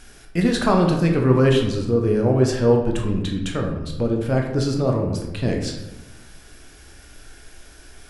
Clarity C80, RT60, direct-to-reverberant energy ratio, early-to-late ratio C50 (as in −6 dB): 7.5 dB, 1.1 s, 1.5 dB, 5.0 dB